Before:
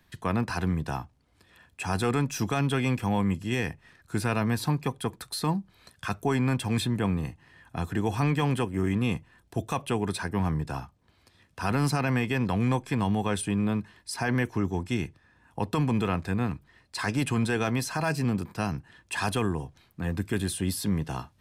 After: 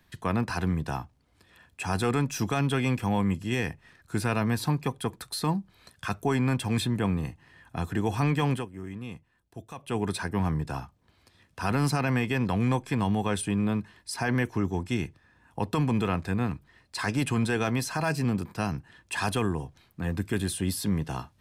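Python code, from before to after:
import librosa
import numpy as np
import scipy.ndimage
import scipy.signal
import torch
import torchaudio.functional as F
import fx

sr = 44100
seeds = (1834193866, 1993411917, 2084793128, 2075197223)

y = fx.edit(x, sr, fx.fade_down_up(start_s=8.53, length_s=1.44, db=-12.0, fade_s=0.2, curve='qua'), tone=tone)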